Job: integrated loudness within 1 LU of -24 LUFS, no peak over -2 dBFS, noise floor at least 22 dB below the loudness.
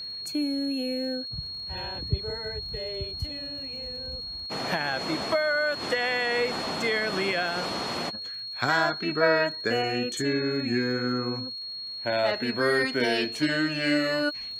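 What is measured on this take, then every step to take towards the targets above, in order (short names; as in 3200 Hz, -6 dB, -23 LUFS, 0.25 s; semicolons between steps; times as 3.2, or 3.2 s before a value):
ticks 46/s; steady tone 4300 Hz; tone level -34 dBFS; loudness -27.5 LUFS; peak -9.0 dBFS; loudness target -24.0 LUFS
-> de-click; notch 4300 Hz, Q 30; gain +3.5 dB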